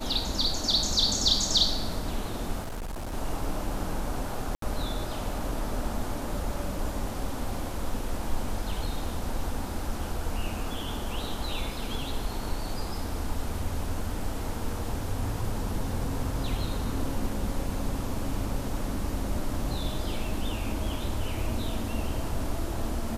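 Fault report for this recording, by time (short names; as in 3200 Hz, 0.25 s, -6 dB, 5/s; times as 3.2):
2.6–3.14 clipped -31.5 dBFS
4.55–4.62 gap 73 ms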